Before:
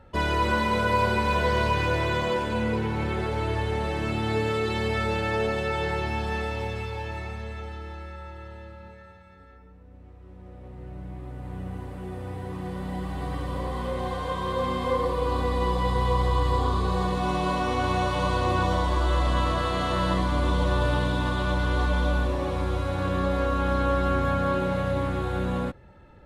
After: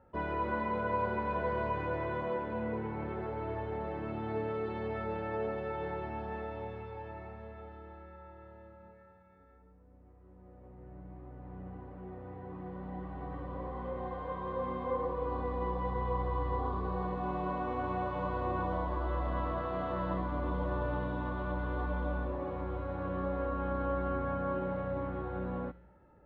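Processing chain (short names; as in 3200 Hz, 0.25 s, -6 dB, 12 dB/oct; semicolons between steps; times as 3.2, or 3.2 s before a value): LPF 1300 Hz 12 dB/oct; low shelf 110 Hz -10.5 dB; resonator 60 Hz, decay 0.82 s, harmonics odd, mix 60%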